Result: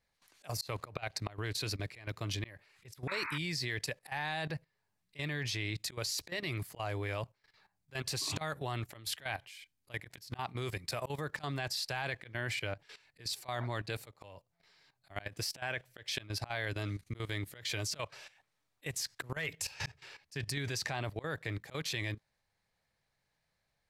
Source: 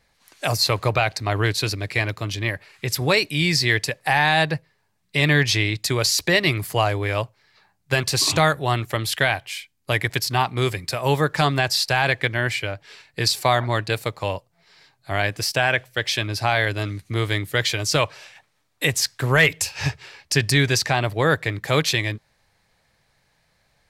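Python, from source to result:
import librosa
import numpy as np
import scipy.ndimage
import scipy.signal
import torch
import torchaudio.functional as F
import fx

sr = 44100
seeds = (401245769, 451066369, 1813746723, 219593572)

y = fx.auto_swell(x, sr, attack_ms=196.0)
y = fx.level_steps(y, sr, step_db=15)
y = fx.spec_paint(y, sr, seeds[0], shape='noise', start_s=3.07, length_s=0.31, low_hz=870.0, high_hz=2600.0, level_db=-34.0)
y = F.gain(torch.from_numpy(y), -6.5).numpy()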